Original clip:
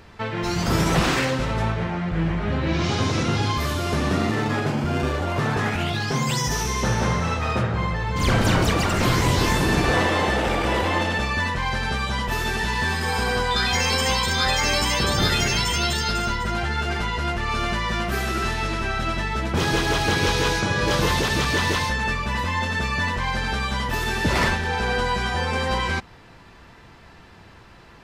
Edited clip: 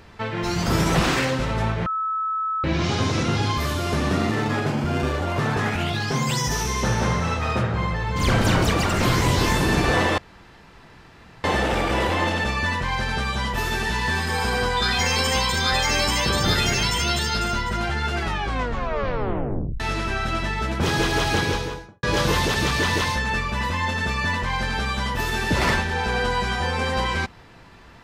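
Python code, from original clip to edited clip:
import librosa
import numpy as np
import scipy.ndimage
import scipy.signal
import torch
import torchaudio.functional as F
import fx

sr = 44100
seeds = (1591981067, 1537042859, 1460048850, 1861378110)

y = fx.studio_fade_out(x, sr, start_s=20.05, length_s=0.72)
y = fx.edit(y, sr, fx.bleep(start_s=1.86, length_s=0.78, hz=1300.0, db=-22.0),
    fx.insert_room_tone(at_s=10.18, length_s=1.26),
    fx.tape_stop(start_s=16.9, length_s=1.64), tone=tone)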